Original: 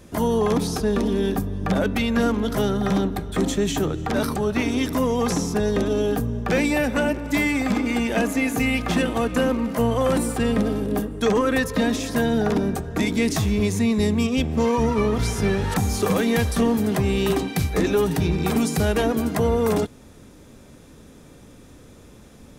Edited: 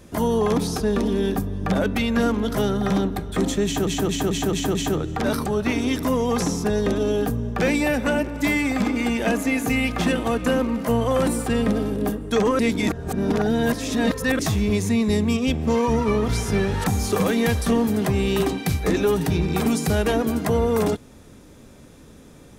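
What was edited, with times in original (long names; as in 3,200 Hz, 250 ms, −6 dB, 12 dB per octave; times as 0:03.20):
0:03.65: stutter 0.22 s, 6 plays
0:11.49–0:13.29: reverse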